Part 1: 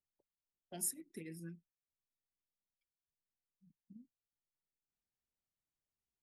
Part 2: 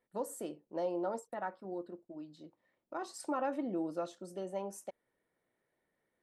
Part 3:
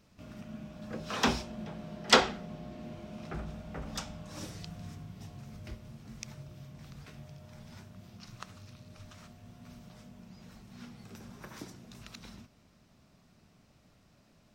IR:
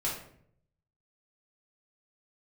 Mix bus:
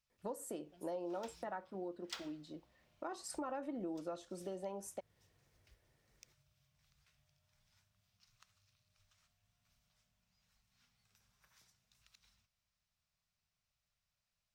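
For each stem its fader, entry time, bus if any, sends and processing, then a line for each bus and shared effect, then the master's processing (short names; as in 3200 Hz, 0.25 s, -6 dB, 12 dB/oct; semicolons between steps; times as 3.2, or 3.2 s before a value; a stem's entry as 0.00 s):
-14.5 dB, 0.00 s, no send, compressor, threshold -47 dBFS, peak gain reduction 13 dB
+2.5 dB, 0.10 s, no send, dry
-16.0 dB, 0.00 s, no send, passive tone stack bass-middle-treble 10-0-10; short-mantissa float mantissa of 2-bit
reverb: off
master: compressor 3:1, threshold -42 dBFS, peak gain reduction 11 dB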